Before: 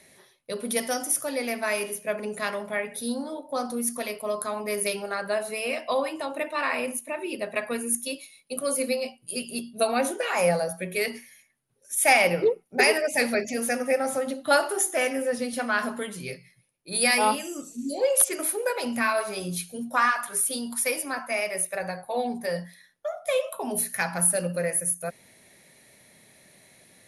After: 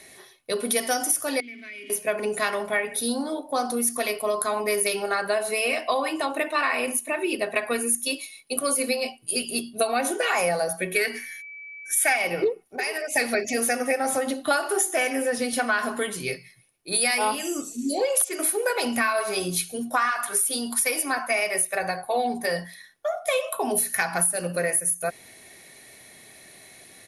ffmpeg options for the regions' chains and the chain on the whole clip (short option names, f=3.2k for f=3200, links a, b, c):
-filter_complex "[0:a]asettb=1/sr,asplit=3[a][b][c];[a]atrim=end=1.404[d];[b]atrim=start=1.4:end=1.9,asetpts=PTS-STARTPTS,afade=t=in:d=0.004:c=qsin,afade=t=out:st=0.496:d=0.004:c=qsin,aeval=exprs='val(0)+0.5*0.0133*sgn(val(0))':c=same,asplit=3[e][f][g];[e]bandpass=f=270:t=q:w=8,volume=0dB[h];[f]bandpass=f=2.29k:t=q:w=8,volume=-6dB[i];[g]bandpass=f=3.01k:t=q:w=8,volume=-9dB[j];[h][i][j]amix=inputs=3:normalize=0,acompressor=threshold=-43dB:ratio=4:attack=3.2:release=140:knee=1:detection=peak[k];[c]atrim=start=1.896[l];[d][k]acrossfade=d=0.004:c1=hsin:c2=qsin[m];[m][l]acrossfade=d=0.004:c1=qsin:c2=hsin,asettb=1/sr,asplit=3[n][o][p];[n]atrim=end=10.944[q];[o]atrim=start=10.94:end=12.16,asetpts=PTS-STARTPTS,afade=t=in:d=0.004:c=qsin,afade=t=out:st=1.216:d=0.004:c=qsin,agate=range=-32dB:threshold=-56dB:ratio=16:release=100:detection=peak,equalizer=f=1.6k:w=3.5:g=13.5,aeval=exprs='val(0)+0.00501*sin(2*PI*2300*n/s)':c=same[r];[p]atrim=start=12.156[s];[q][r]acrossfade=d=0.004:c1=hsin:c2=qsin[t];[t][s]acrossfade=d=0.004:c1=qsin:c2=hsin,asettb=1/sr,asplit=3[u][v][w];[u]atrim=end=12.684[x];[v]atrim=start=12.68:end=13.16,asetpts=PTS-STARTPTS,afade=t=in:d=0.004:c=qsin,afade=t=out:st=0.476:d=0.004:c=qsin,acompressor=threshold=-32dB:ratio=5:attack=3.2:release=140:knee=1:detection=peak,equalizer=f=160:t=o:w=1.6:g=-11.5[y];[w]atrim=start=13.156[z];[x][y]acrossfade=d=0.004:c1=hsin:c2=qsin[aa];[aa][z]acrossfade=d=0.004:c1=qsin:c2=hsin,lowshelf=f=490:g=-3.5,aecho=1:1:2.7:0.36,acompressor=threshold=-27dB:ratio=6,volume=7dB"